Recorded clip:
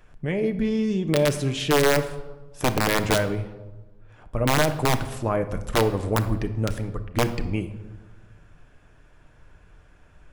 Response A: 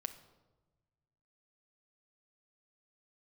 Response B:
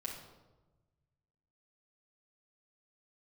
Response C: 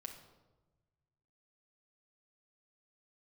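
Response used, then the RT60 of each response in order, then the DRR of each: A; 1.2 s, 1.2 s, 1.2 s; 8.0 dB, -3.0 dB, 2.0 dB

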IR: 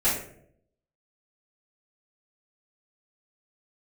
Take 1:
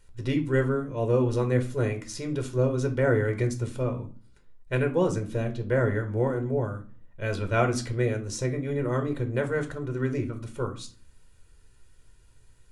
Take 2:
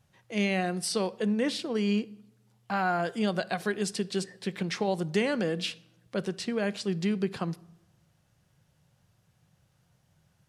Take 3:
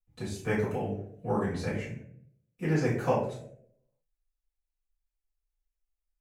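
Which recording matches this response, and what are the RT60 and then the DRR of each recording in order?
3; 0.40 s, 0.95 s, 0.70 s; 5.0 dB, 16.5 dB, -12.5 dB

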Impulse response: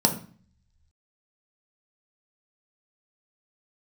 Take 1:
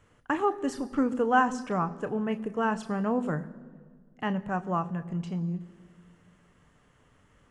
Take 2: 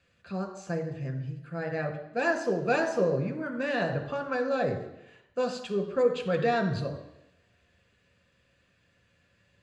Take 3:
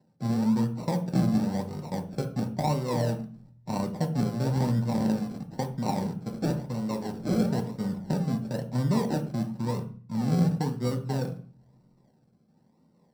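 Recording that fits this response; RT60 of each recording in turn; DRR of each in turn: 3; 1.7 s, 0.85 s, 0.45 s; 9.5 dB, 4.0 dB, 3.0 dB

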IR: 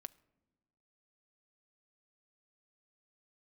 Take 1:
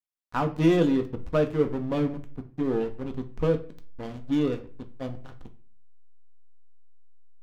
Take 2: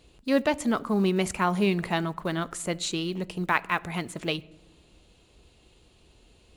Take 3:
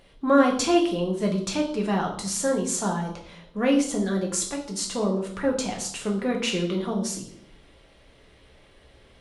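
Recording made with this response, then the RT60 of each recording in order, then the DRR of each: 2; 0.40 s, no single decay rate, 0.65 s; 5.5 dB, 15.5 dB, -0.5 dB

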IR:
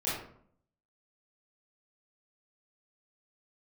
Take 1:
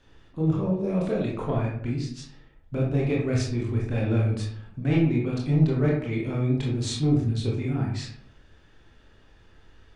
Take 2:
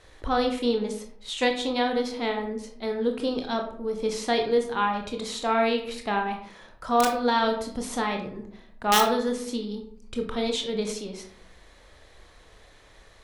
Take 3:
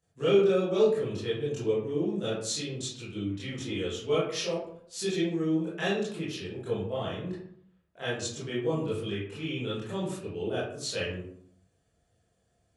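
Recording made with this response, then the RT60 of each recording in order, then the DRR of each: 3; 0.60 s, 0.60 s, 0.60 s; -3.0 dB, 3.0 dB, -10.5 dB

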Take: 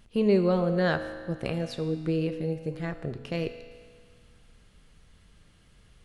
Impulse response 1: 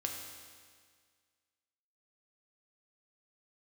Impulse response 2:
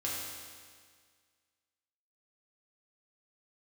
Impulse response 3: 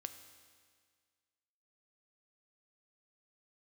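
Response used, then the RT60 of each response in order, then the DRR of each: 3; 1.8 s, 1.8 s, 1.8 s; 0.5 dB, -6.5 dB, 8.0 dB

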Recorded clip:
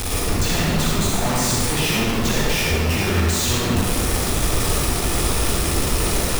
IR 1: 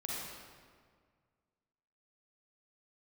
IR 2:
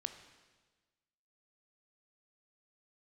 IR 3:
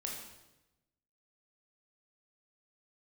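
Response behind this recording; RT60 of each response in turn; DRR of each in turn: 1; 1.8 s, 1.3 s, 0.95 s; -5.5 dB, 8.0 dB, -1.5 dB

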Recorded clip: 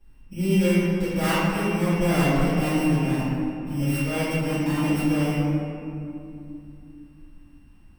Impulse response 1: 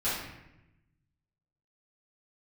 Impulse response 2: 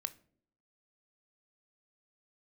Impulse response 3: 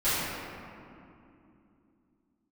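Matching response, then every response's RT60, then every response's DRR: 3; 0.90 s, no single decay rate, 2.7 s; -14.0 dB, 12.0 dB, -17.5 dB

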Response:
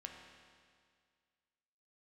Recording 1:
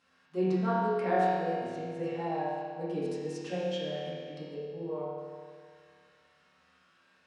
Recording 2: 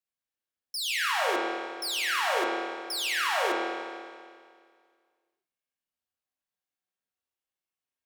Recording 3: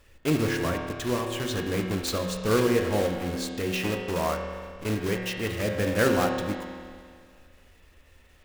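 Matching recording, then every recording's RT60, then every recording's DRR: 3; 2.0 s, 2.0 s, 2.0 s; -11.0 dB, -4.0 dB, 1.5 dB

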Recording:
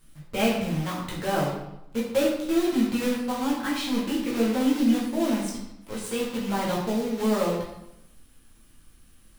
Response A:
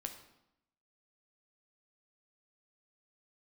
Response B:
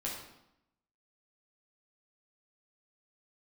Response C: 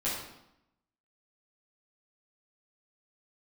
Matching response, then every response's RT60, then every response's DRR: B; 0.80 s, 0.80 s, 0.80 s; 4.5 dB, -5.0 dB, -10.5 dB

